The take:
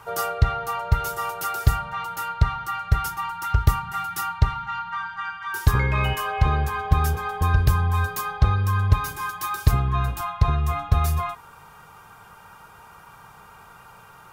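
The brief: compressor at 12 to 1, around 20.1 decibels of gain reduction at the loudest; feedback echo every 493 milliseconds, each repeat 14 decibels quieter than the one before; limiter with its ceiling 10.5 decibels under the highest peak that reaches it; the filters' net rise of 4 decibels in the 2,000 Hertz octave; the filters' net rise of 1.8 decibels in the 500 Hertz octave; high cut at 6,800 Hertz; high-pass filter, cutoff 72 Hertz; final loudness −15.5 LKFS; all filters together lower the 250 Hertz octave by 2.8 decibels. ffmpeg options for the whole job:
ffmpeg -i in.wav -af "highpass=72,lowpass=6800,equalizer=frequency=250:width_type=o:gain=-7,equalizer=frequency=500:width_type=o:gain=4,equalizer=frequency=2000:width_type=o:gain=5.5,acompressor=threshold=-36dB:ratio=12,alimiter=level_in=9dB:limit=-24dB:level=0:latency=1,volume=-9dB,aecho=1:1:493|986:0.2|0.0399,volume=26.5dB" out.wav

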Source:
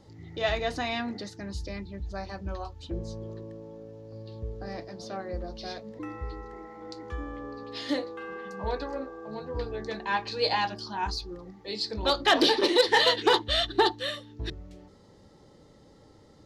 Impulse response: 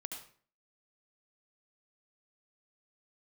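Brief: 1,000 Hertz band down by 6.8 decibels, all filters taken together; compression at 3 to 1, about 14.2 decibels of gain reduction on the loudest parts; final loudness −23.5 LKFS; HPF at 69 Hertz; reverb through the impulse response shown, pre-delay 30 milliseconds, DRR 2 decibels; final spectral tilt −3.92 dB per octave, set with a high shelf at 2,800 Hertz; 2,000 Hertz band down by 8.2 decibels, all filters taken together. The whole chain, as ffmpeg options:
-filter_complex "[0:a]highpass=69,equalizer=frequency=1000:width_type=o:gain=-7,equalizer=frequency=2000:width_type=o:gain=-6,highshelf=frequency=2800:gain=-4.5,acompressor=threshold=-40dB:ratio=3,asplit=2[link_01][link_02];[1:a]atrim=start_sample=2205,adelay=30[link_03];[link_02][link_03]afir=irnorm=-1:irlink=0,volume=0dB[link_04];[link_01][link_04]amix=inputs=2:normalize=0,volume=17dB"

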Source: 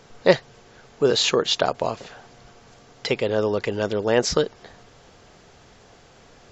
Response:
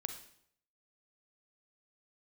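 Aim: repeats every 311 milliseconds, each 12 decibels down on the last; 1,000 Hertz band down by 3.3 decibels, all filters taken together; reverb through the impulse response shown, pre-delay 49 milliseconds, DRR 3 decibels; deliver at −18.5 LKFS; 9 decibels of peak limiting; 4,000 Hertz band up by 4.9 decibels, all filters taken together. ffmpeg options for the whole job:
-filter_complex "[0:a]equalizer=frequency=1000:width_type=o:gain=-5,equalizer=frequency=4000:width_type=o:gain=6,alimiter=limit=-10.5dB:level=0:latency=1,aecho=1:1:311|622|933:0.251|0.0628|0.0157,asplit=2[link_01][link_02];[1:a]atrim=start_sample=2205,adelay=49[link_03];[link_02][link_03]afir=irnorm=-1:irlink=0,volume=-2dB[link_04];[link_01][link_04]amix=inputs=2:normalize=0,volume=3.5dB"

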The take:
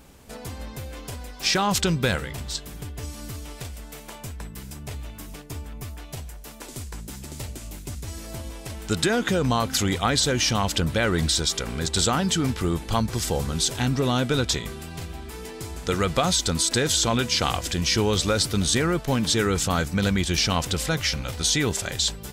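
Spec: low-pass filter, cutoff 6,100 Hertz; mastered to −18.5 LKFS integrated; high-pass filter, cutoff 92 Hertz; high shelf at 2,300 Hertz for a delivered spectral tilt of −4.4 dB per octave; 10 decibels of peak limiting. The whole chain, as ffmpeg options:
ffmpeg -i in.wav -af "highpass=92,lowpass=6100,highshelf=frequency=2300:gain=-4.5,volume=11dB,alimiter=limit=-7.5dB:level=0:latency=1" out.wav

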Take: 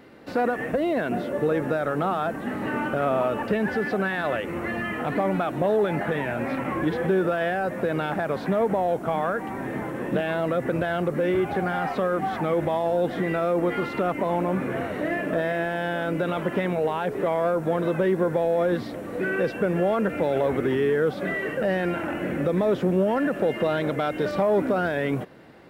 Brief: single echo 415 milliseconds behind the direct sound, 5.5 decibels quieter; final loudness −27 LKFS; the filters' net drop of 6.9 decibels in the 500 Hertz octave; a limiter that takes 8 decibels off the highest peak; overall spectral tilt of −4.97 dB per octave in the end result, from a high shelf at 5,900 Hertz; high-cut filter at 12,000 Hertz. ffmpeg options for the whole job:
ffmpeg -i in.wav -af "lowpass=12000,equalizer=frequency=500:width_type=o:gain=-9,highshelf=frequency=5900:gain=5.5,alimiter=limit=-21dB:level=0:latency=1,aecho=1:1:415:0.531,volume=2.5dB" out.wav

